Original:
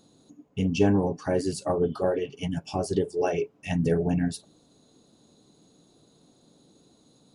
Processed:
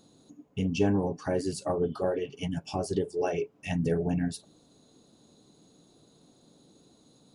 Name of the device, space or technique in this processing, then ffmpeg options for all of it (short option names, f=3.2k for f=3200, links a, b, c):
parallel compression: -filter_complex "[0:a]asplit=2[a][b];[b]acompressor=threshold=-33dB:ratio=6,volume=-3dB[c];[a][c]amix=inputs=2:normalize=0,volume=-5dB"